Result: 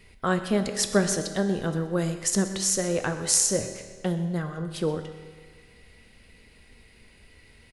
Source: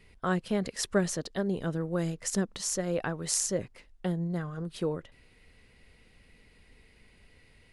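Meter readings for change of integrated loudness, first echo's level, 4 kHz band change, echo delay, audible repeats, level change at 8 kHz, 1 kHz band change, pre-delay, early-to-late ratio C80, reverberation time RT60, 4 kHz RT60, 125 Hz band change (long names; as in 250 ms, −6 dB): +5.5 dB, −17.5 dB, +7.0 dB, 126 ms, 1, +8.0 dB, +5.0 dB, 5 ms, 9.5 dB, 1.7 s, 1.5 s, +4.0 dB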